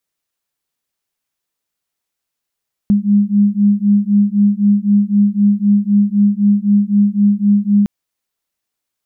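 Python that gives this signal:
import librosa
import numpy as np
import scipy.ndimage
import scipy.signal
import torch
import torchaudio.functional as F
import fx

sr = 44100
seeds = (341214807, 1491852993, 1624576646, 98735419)

y = fx.two_tone_beats(sr, length_s=4.96, hz=202.0, beat_hz=3.9, level_db=-12.5)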